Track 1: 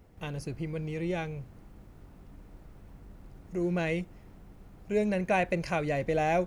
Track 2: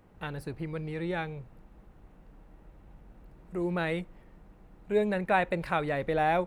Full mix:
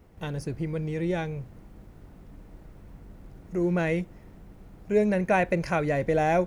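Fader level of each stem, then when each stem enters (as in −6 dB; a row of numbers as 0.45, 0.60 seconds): +1.5, −4.5 decibels; 0.00, 0.00 seconds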